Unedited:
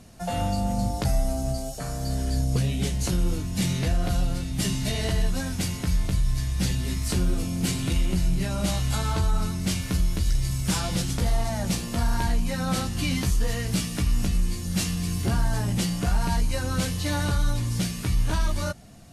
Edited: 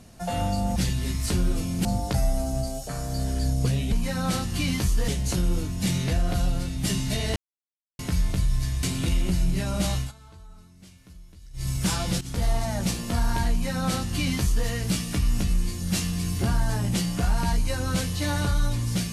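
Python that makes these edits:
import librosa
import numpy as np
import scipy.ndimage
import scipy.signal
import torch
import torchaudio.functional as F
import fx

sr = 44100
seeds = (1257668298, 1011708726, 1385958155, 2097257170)

y = fx.edit(x, sr, fx.silence(start_s=5.11, length_s=0.63),
    fx.move(start_s=6.58, length_s=1.09, to_s=0.76),
    fx.fade_down_up(start_s=8.81, length_s=1.71, db=-23.5, fade_s=0.15),
    fx.fade_in_from(start_s=11.05, length_s=0.25, floor_db=-14.5),
    fx.duplicate(start_s=12.35, length_s=1.16, to_s=2.83), tone=tone)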